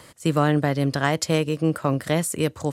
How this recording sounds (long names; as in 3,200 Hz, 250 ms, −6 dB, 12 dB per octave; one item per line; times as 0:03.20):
background noise floor −49 dBFS
spectral slope −5.5 dB per octave